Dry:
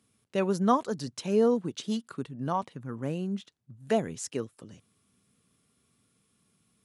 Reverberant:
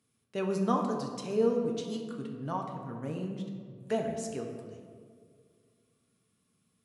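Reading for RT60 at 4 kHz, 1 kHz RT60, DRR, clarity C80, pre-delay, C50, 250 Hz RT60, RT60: 1.0 s, 1.7 s, 1.5 dB, 6.0 dB, 5 ms, 4.5 dB, 2.4 s, 2.0 s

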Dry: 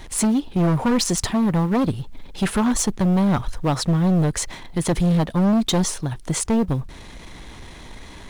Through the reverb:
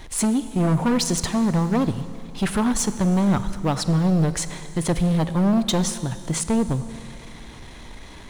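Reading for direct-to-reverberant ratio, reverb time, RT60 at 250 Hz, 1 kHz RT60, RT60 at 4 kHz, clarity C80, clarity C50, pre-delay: 12.0 dB, 2.6 s, 2.6 s, 2.6 s, 2.6 s, 13.5 dB, 12.5 dB, 25 ms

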